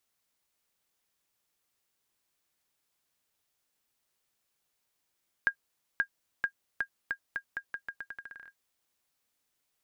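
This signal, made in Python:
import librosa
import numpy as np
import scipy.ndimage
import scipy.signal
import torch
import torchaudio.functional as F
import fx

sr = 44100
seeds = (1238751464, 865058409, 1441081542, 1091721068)

y = fx.bouncing_ball(sr, first_gap_s=0.53, ratio=0.83, hz=1620.0, decay_ms=83.0, level_db=-15.0)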